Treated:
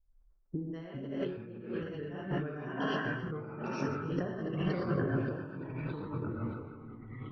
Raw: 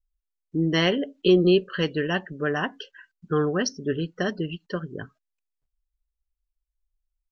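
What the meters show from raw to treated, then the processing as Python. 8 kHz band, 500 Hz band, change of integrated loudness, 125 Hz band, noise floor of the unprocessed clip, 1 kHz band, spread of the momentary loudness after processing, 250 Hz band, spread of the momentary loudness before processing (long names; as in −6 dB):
can't be measured, −12.5 dB, −12.0 dB, −5.5 dB, −83 dBFS, −6.5 dB, 10 LU, −9.5 dB, 13 LU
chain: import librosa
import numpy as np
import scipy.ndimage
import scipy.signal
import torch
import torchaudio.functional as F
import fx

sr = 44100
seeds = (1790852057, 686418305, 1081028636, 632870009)

p1 = fx.comb_fb(x, sr, f0_hz=270.0, decay_s=1.2, harmonics='all', damping=0.0, mix_pct=50)
p2 = p1 + fx.echo_split(p1, sr, split_hz=1100.0, low_ms=106, high_ms=142, feedback_pct=52, wet_db=-13.5, dry=0)
p3 = fx.rev_gated(p2, sr, seeds[0], gate_ms=140, shape='rising', drr_db=-7.0)
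p4 = fx.over_compress(p3, sr, threshold_db=-38.0, ratio=-1.0)
p5 = fx.high_shelf(p4, sr, hz=2100.0, db=-8.5)
p6 = fx.echo_pitch(p5, sr, ms=305, semitones=-3, count=3, db_per_echo=-6.0)
p7 = fx.peak_eq(p6, sr, hz=3900.0, db=-9.0, octaves=2.1)
p8 = fx.env_lowpass(p7, sr, base_hz=980.0, full_db=-34.5)
y = fx.sustainer(p8, sr, db_per_s=80.0)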